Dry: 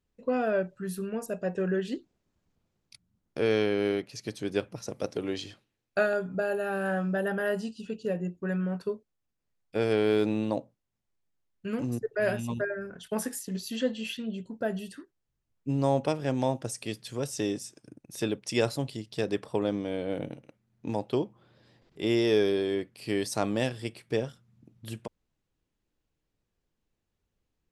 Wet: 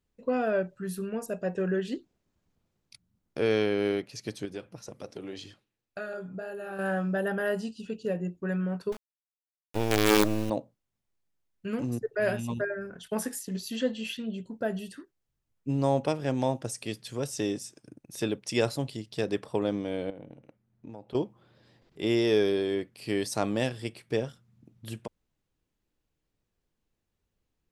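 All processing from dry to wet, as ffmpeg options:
-filter_complex "[0:a]asettb=1/sr,asplit=3[s0][s1][s2];[s0]atrim=end=4.454[s3];[s1]atrim=start=4.45:end=6.79,asetpts=PTS-STARTPTS,afade=t=in:d=0.004:c=qsin,afade=t=out:st=2.336:d=0.004:c=qsin,acompressor=threshold=0.0224:ratio=2:attack=3.2:release=140:knee=1:detection=peak,flanger=delay=0.6:depth=5.7:regen=-56:speed=1.9:shape=sinusoidal[s4];[s2]atrim=start=6.786[s5];[s3][s4]acrossfade=d=0.004:c1=hsin:c2=qsin[s6];[s6][s5]acrossfade=d=0.004:c1=qsin:c2=hsin,asettb=1/sr,asplit=3[s7][s8][s9];[s7]atrim=end=8.924[s10];[s8]atrim=start=8.92:end=10.5,asetpts=PTS-STARTPTS,afade=t=in:d=0.004:c=qsin,afade=t=out:st=1.576:d=0.004:c=qsin,equalizer=f=310:t=o:w=0.26:g=7.5,acrusher=bits=4:dc=4:mix=0:aa=0.000001[s11];[s9]atrim=start=10.496[s12];[s10][s11]acrossfade=d=0.004:c1=hsin:c2=qsin[s13];[s13][s12]acrossfade=d=0.004:c1=qsin:c2=hsin,asettb=1/sr,asplit=3[s14][s15][s16];[s14]atrim=end=20.104[s17];[s15]atrim=start=20.1:end=21.15,asetpts=PTS-STARTPTS,afade=t=in:d=0.004:c=qsin,afade=t=out:st=1.046:d=0.004:c=qsin,highshelf=f=2500:g=-10.5,acompressor=threshold=0.00708:ratio=3:attack=3.2:release=140:knee=1:detection=peak[s18];[s16]atrim=start=21.146[s19];[s17][s18]acrossfade=d=0.004:c1=hsin:c2=qsin[s20];[s20][s19]acrossfade=d=0.004:c1=qsin:c2=hsin"

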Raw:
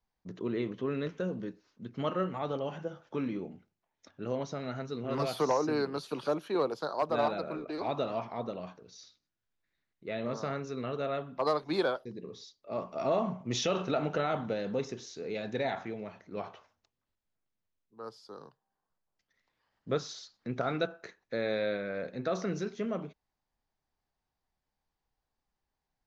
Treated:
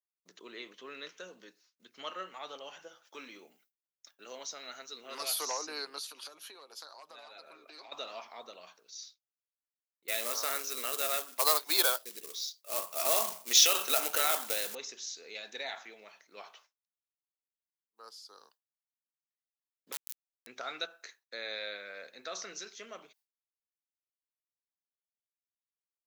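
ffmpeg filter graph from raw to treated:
-filter_complex "[0:a]asettb=1/sr,asplit=3[s0][s1][s2];[s0]atrim=end=3.054[s3];[s1]atrim=start=3.05:end=5.51,asetpts=PTS-STARTPTS,afade=t=in:d=0.004:c=qsin,afade=t=out:st=2.456:d=0.004:c=qsin,highpass=140,highshelf=f=8400:g=9[s4];[s2]atrim=start=5.506[s5];[s3][s4]acrossfade=d=0.004:c1=hsin:c2=qsin[s6];[s6][s5]acrossfade=d=0.004:c1=qsin:c2=hsin,asettb=1/sr,asplit=3[s7][s8][s9];[s7]atrim=end=6.074[s10];[s8]atrim=start=6.07:end=7.92,asetpts=PTS-STARTPTS,afade=t=in:d=0.004:c=qsin,afade=t=out:st=1.846:d=0.004:c=qsin,aecho=1:1:7.4:0.38,atrim=end_sample=81585,acompressor=threshold=0.0112:ratio=10:attack=3.2:release=140:knee=1:detection=peak[s11];[s9]atrim=start=7.916[s12];[s10][s11]acrossfade=d=0.004:c1=hsin:c2=qsin[s13];[s13][s12]acrossfade=d=0.004:c1=qsin:c2=hsin,asettb=1/sr,asplit=3[s14][s15][s16];[s14]atrim=end=10.084[s17];[s15]atrim=start=10.08:end=14.75,asetpts=PTS-STARTPTS,afade=t=in:d=0.004:c=qsin,afade=t=out:st=4.666:d=0.004:c=qsin,highpass=240,acontrast=78,acrusher=bits=4:mode=log:mix=0:aa=0.000001[s18];[s16]atrim=start=14.746[s19];[s17][s18]acrossfade=d=0.004:c1=hsin:c2=qsin[s20];[s20][s19]acrossfade=d=0.004:c1=qsin:c2=hsin,asettb=1/sr,asplit=3[s21][s22][s23];[s21]atrim=end=19.924[s24];[s22]atrim=start=19.92:end=20.47,asetpts=PTS-STARTPTS,afade=t=in:d=0.004:c=qsin,afade=t=out:st=0.546:d=0.004:c=qsin,acompressor=threshold=0.0112:ratio=3:attack=3.2:release=140:knee=1:detection=peak,acrusher=bits=3:dc=4:mix=0:aa=0.000001[s25];[s23]atrim=start=20.466[s26];[s24][s25]acrossfade=d=0.004:c1=hsin:c2=qsin[s27];[s27][s26]acrossfade=d=0.004:c1=qsin:c2=hsin,agate=range=0.0224:threshold=0.002:ratio=3:detection=peak,highpass=250,aderivative,volume=3.16"

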